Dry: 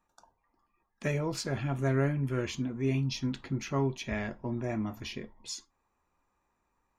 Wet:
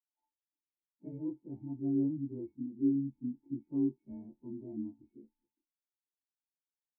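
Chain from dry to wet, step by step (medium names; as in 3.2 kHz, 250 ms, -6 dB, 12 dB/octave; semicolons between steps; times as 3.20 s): partials quantised in pitch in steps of 2 st; cascade formant filter u; spectral contrast expander 1.5:1; trim +5.5 dB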